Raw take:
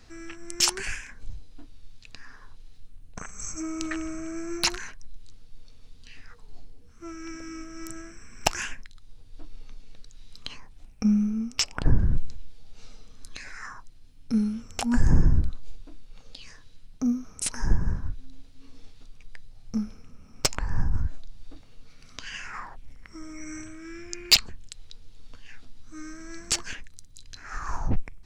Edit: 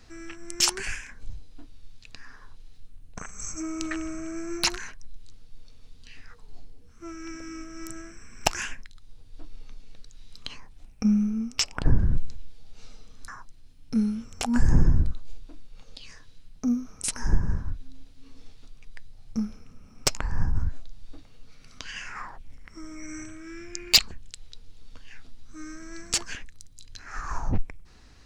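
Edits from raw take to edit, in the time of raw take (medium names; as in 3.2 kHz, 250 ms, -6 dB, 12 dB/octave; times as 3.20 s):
13.28–13.66 s: delete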